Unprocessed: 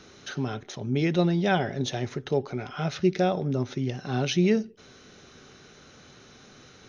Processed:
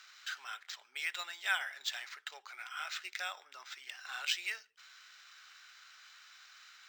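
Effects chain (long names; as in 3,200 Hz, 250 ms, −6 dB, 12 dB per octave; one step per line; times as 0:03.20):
high-pass filter 1,300 Hz 24 dB per octave
linearly interpolated sample-rate reduction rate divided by 4×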